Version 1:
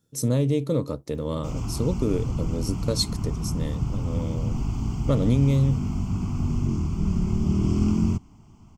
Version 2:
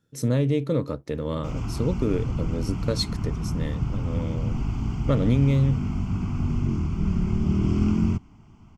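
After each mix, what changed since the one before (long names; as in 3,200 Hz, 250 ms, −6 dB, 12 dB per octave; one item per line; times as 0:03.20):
master: add drawn EQ curve 1,100 Hz 0 dB, 1,600 Hz +7 dB, 7,900 Hz −8 dB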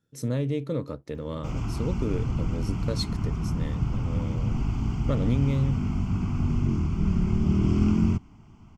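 speech −5.0 dB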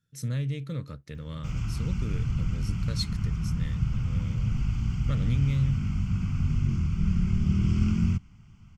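master: add flat-topped bell 510 Hz −12.5 dB 2.4 octaves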